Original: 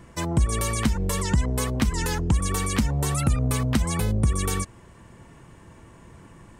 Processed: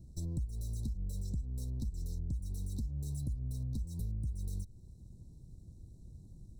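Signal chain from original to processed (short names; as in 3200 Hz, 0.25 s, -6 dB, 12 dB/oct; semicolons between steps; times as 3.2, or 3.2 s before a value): minimum comb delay 0.53 ms; Chebyshev band-stop 990–3900 Hz, order 5; passive tone stack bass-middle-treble 10-0-1; compressor 6:1, threshold -43 dBFS, peak gain reduction 17.5 dB; gain +8 dB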